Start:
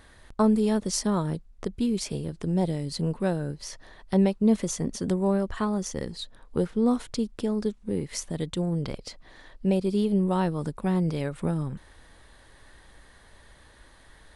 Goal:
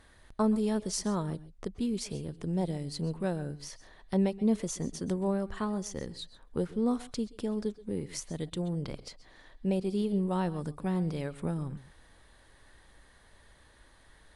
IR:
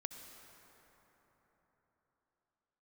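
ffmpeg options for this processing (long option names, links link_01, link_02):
-filter_complex "[1:a]atrim=start_sample=2205,atrim=end_sample=3087,asetrate=22050,aresample=44100[link_01];[0:a][link_01]afir=irnorm=-1:irlink=0,volume=-5.5dB"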